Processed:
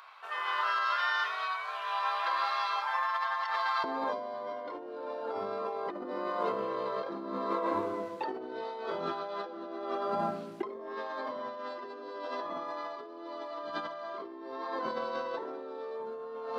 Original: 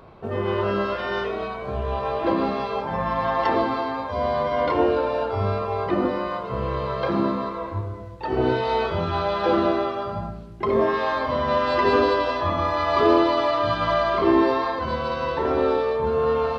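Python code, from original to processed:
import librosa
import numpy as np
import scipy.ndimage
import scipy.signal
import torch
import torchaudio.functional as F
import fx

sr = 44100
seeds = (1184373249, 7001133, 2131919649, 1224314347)

y = fx.highpass(x, sr, hz=fx.steps((0.0, 1100.0), (3.84, 240.0)), slope=24)
y = fx.dynamic_eq(y, sr, hz=2600.0, q=2.1, threshold_db=-46.0, ratio=4.0, max_db=-7)
y = fx.over_compress(y, sr, threshold_db=-33.0, ratio=-1.0)
y = F.gain(torch.from_numpy(y), -3.5).numpy()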